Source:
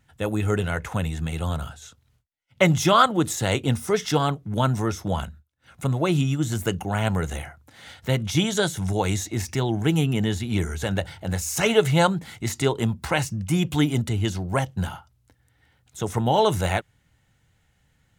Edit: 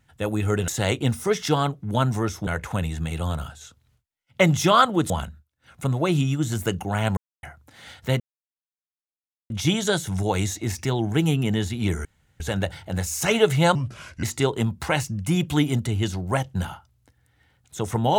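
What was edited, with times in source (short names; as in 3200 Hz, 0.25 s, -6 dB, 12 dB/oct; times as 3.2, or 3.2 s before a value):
3.31–5.1 move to 0.68
7.17–7.43 mute
8.2 insert silence 1.30 s
10.75 insert room tone 0.35 s
12.1–12.45 speed 73%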